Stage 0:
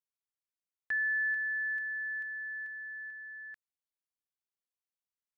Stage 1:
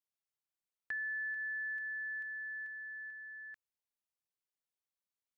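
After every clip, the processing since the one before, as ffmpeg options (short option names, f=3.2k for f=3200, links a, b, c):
-af "acompressor=threshold=-34dB:ratio=6,volume=-3dB"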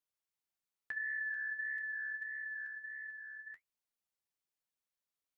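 -af "flanger=delay=6.7:depth=8:regen=-51:speed=1.6:shape=sinusoidal,volume=4dB"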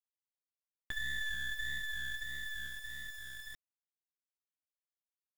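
-af "acrusher=bits=6:dc=4:mix=0:aa=0.000001,volume=5dB"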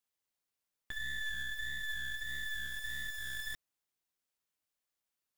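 -af "alimiter=level_in=12dB:limit=-24dB:level=0:latency=1:release=332,volume=-12dB,volume=7dB"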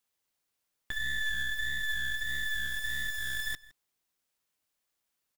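-filter_complex "[0:a]asplit=2[a][b];[b]adelay=163.3,volume=-20dB,highshelf=f=4k:g=-3.67[c];[a][c]amix=inputs=2:normalize=0,volume=6dB"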